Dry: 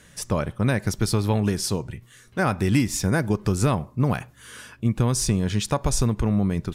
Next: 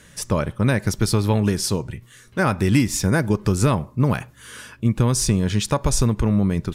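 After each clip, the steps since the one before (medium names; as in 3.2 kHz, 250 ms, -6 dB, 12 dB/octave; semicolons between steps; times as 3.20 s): band-stop 730 Hz, Q 12; trim +3 dB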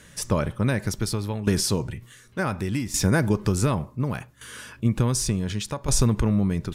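transient shaper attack +1 dB, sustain +5 dB; tremolo saw down 0.68 Hz, depth 75%; trim -1 dB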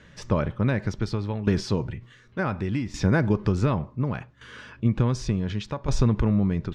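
distance through air 190 m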